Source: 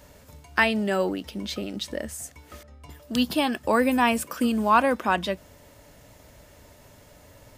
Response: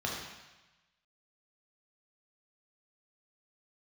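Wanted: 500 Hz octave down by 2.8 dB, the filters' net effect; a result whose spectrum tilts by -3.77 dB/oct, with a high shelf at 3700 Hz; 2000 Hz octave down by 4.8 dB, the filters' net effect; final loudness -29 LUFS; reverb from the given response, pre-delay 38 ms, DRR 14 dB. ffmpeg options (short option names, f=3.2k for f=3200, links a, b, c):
-filter_complex "[0:a]equalizer=f=500:t=o:g=-3,equalizer=f=2k:t=o:g=-4,highshelf=f=3.7k:g=-8,asplit=2[a][b];[1:a]atrim=start_sample=2205,adelay=38[c];[b][c]afir=irnorm=-1:irlink=0,volume=-20dB[d];[a][d]amix=inputs=2:normalize=0,volume=-2.5dB"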